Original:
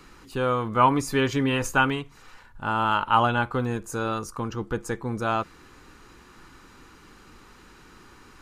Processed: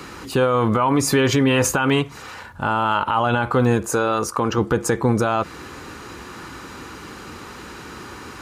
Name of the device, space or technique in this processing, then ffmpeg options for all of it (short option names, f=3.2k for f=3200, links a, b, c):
mastering chain: -filter_complex "[0:a]asettb=1/sr,asplit=3[a][b][c];[a]atrim=end=3.864[d];[b]atrim=start=3.86:end=4.58,asetpts=PTS-STARTPTS,afade=t=in:d=0.004:c=qsin,afade=t=out:st=0.716:d=0.004:c=qsin,bass=f=250:g=-7,treble=f=4k:g=-3[e];[c]atrim=start=4.576[f];[d][e]acrossfade=d=0.004:c1=hsin:c2=qsin[g];[g][f]acrossfade=d=0.004:c1=qsin:c2=hsin,highpass=f=57:w=0.5412,highpass=f=57:w=1.3066,equalizer=f=580:t=o:w=0.95:g=3.5,acompressor=threshold=-24dB:ratio=2.5,alimiter=level_in=22dB:limit=-1dB:release=50:level=0:latency=1,volume=-8dB"